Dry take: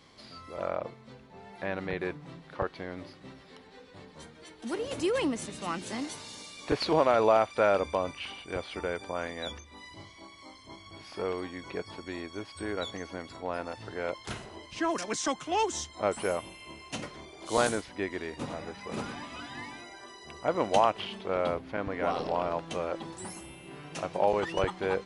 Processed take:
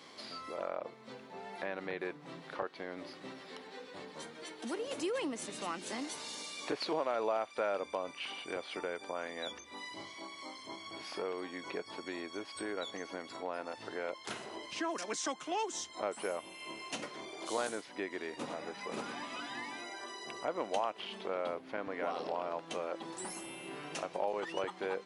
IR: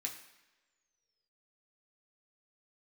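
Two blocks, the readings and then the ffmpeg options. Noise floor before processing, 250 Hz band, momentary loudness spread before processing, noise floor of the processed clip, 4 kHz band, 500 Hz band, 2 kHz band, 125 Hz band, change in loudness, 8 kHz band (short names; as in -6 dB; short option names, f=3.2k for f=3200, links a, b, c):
-53 dBFS, -7.0 dB, 21 LU, -53 dBFS, -3.5 dB, -7.5 dB, -4.5 dB, -14.5 dB, -8.0 dB, -3.5 dB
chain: -af "highpass=260,acompressor=threshold=-47dB:ratio=2,volume=4.5dB"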